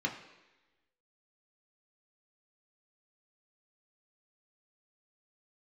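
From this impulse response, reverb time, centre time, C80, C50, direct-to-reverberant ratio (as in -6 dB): 1.1 s, 21 ms, 11.0 dB, 9.0 dB, 0.0 dB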